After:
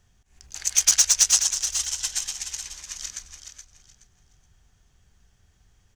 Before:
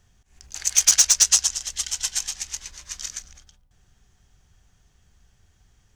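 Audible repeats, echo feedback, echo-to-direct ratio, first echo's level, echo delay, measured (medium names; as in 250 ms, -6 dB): 3, 23%, -8.5 dB, -8.5 dB, 423 ms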